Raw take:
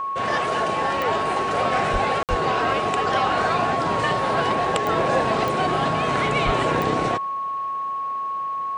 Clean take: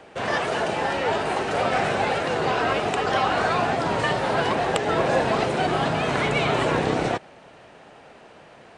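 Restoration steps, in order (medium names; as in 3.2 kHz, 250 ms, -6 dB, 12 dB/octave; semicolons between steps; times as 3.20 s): de-click; band-stop 1.1 kHz, Q 30; 1.92–2.04 s: high-pass 140 Hz 24 dB/octave; 2.29–2.41 s: high-pass 140 Hz 24 dB/octave; 6.45–6.57 s: high-pass 140 Hz 24 dB/octave; interpolate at 2.23 s, 58 ms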